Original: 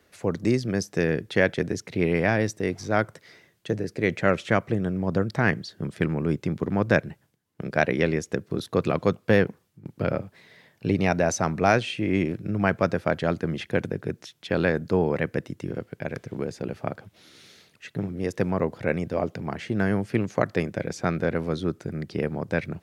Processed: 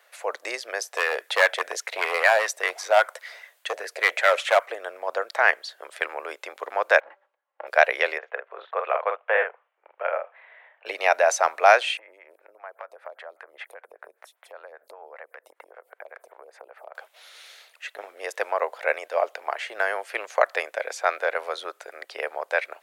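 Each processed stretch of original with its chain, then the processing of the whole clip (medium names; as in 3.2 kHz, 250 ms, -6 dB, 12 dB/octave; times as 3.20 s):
0.95–4.66 s: treble shelf 2.3 kHz +4.5 dB + hard clipper -18 dBFS + sweeping bell 5 Hz 520–2000 Hz +7 dB
7.00–7.67 s: comb filter that takes the minimum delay 3.6 ms + low-pass 1.6 kHz + de-hum 195 Hz, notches 8
8.18–10.86 s: Chebyshev low-pass 3.1 kHz, order 3 + three-band isolator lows -23 dB, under 420 Hz, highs -23 dB, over 2.5 kHz + doubling 46 ms -6 dB
11.97–16.95 s: high-order bell 4.4 kHz -8.5 dB + compression 16:1, threshold -35 dBFS + lamp-driven phase shifter 5.1 Hz
whole clip: steep high-pass 570 Hz 36 dB/octave; peaking EQ 5.4 kHz -5.5 dB 0.76 oct; trim +6.5 dB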